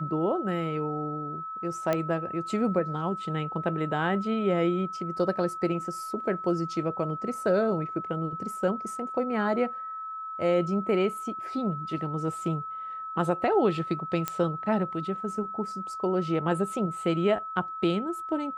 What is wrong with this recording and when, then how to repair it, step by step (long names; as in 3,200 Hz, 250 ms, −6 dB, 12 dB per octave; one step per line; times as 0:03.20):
whistle 1,300 Hz −34 dBFS
0:01.93: click −13 dBFS
0:14.28: click −12 dBFS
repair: click removal
notch filter 1,300 Hz, Q 30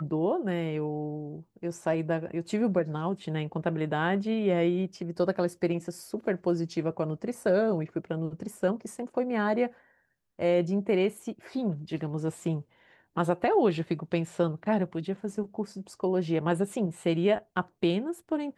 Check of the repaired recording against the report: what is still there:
none of them is left